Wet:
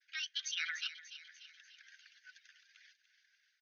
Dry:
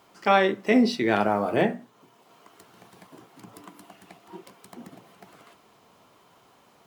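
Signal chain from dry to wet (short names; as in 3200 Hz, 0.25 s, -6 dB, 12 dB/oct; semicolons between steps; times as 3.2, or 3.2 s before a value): delay-line pitch shifter +8 st; steep high-pass 1500 Hz 96 dB/oct; reverb removal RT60 0.79 s; expander -59 dBFS; Chebyshev low-pass 6500 Hz, order 10; limiter -22.5 dBFS, peak gain reduction 9 dB; AGC gain up to 5 dB; tempo 1.9×; thin delay 0.294 s, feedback 53%, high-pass 2200 Hz, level -11 dB; gain -7.5 dB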